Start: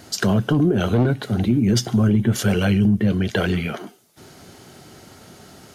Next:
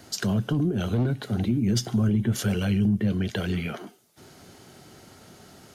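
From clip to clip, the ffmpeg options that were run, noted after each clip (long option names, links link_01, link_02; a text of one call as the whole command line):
ffmpeg -i in.wav -filter_complex "[0:a]acrossover=split=270|3000[link_01][link_02][link_03];[link_02]acompressor=threshold=-26dB:ratio=6[link_04];[link_01][link_04][link_03]amix=inputs=3:normalize=0,volume=-5dB" out.wav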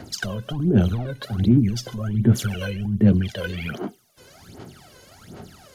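ffmpeg -i in.wav -af "alimiter=limit=-19.5dB:level=0:latency=1:release=96,equalizer=frequency=8400:width=1.5:gain=-2.5,aphaser=in_gain=1:out_gain=1:delay=2:decay=0.79:speed=1.3:type=sinusoidal,volume=-1dB" out.wav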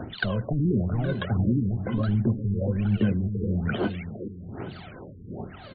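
ffmpeg -i in.wav -filter_complex "[0:a]acompressor=threshold=-26dB:ratio=6,asplit=2[link_01][link_02];[link_02]aecho=0:1:408|816|1224|1632|2040:0.355|0.156|0.0687|0.0302|0.0133[link_03];[link_01][link_03]amix=inputs=2:normalize=0,afftfilt=real='re*lt(b*sr/1024,460*pow(4700/460,0.5+0.5*sin(2*PI*1.1*pts/sr)))':imag='im*lt(b*sr/1024,460*pow(4700/460,0.5+0.5*sin(2*PI*1.1*pts/sr)))':win_size=1024:overlap=0.75,volume=4.5dB" out.wav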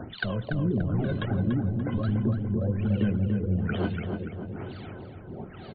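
ffmpeg -i in.wav -filter_complex "[0:a]asplit=2[link_01][link_02];[link_02]adelay=289,lowpass=frequency=2000:poles=1,volume=-5dB,asplit=2[link_03][link_04];[link_04]adelay=289,lowpass=frequency=2000:poles=1,volume=0.55,asplit=2[link_05][link_06];[link_06]adelay=289,lowpass=frequency=2000:poles=1,volume=0.55,asplit=2[link_07][link_08];[link_08]adelay=289,lowpass=frequency=2000:poles=1,volume=0.55,asplit=2[link_09][link_10];[link_10]adelay=289,lowpass=frequency=2000:poles=1,volume=0.55,asplit=2[link_11][link_12];[link_12]adelay=289,lowpass=frequency=2000:poles=1,volume=0.55,asplit=2[link_13][link_14];[link_14]adelay=289,lowpass=frequency=2000:poles=1,volume=0.55[link_15];[link_01][link_03][link_05][link_07][link_09][link_11][link_13][link_15]amix=inputs=8:normalize=0,volume=-3dB" out.wav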